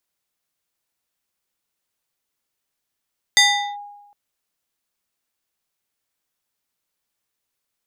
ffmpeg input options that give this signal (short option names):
-f lavfi -i "aevalsrc='0.398*pow(10,-3*t/1.06)*sin(2*PI*819*t+2.2*clip(1-t/0.4,0,1)*sin(2*PI*3.42*819*t))':d=0.76:s=44100"